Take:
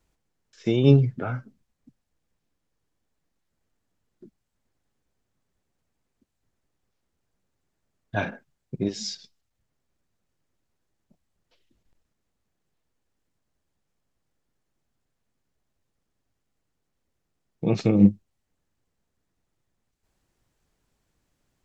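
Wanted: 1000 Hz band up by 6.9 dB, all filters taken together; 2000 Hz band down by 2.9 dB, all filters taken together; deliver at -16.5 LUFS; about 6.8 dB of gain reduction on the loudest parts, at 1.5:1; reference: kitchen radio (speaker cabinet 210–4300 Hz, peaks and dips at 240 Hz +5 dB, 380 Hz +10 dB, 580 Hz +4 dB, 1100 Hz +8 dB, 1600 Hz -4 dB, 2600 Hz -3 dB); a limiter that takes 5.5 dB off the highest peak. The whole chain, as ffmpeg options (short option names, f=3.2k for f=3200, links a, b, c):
-af "equalizer=f=1k:t=o:g=7,equalizer=f=2k:t=o:g=-4,acompressor=threshold=-29dB:ratio=1.5,alimiter=limit=-16.5dB:level=0:latency=1,highpass=210,equalizer=f=240:t=q:w=4:g=5,equalizer=f=380:t=q:w=4:g=10,equalizer=f=580:t=q:w=4:g=4,equalizer=f=1.1k:t=q:w=4:g=8,equalizer=f=1.6k:t=q:w=4:g=-4,equalizer=f=2.6k:t=q:w=4:g=-3,lowpass=f=4.3k:w=0.5412,lowpass=f=4.3k:w=1.3066,volume=11.5dB"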